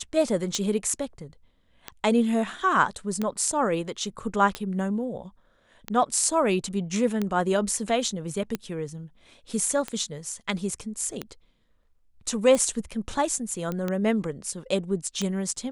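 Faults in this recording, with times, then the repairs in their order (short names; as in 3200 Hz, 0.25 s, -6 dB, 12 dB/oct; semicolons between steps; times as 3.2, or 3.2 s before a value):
tick 45 rpm -14 dBFS
13.72 pop -18 dBFS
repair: de-click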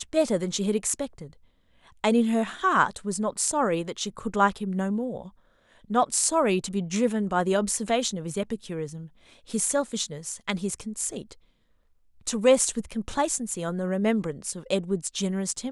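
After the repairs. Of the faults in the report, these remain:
none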